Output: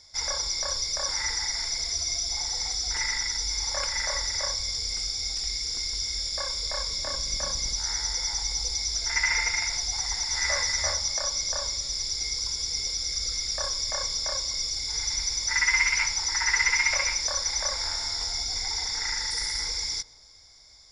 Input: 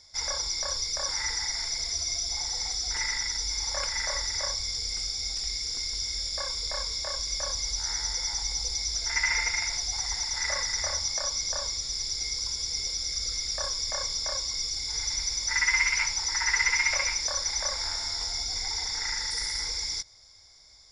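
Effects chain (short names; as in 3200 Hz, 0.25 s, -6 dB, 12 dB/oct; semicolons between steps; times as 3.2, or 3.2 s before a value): 6.88–7.73 octaver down 1 oct, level -1 dB; 10.28–10.93 doubler 14 ms -3 dB; darkening echo 0.124 s, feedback 69%, low-pass 1500 Hz, level -19 dB; gain +1.5 dB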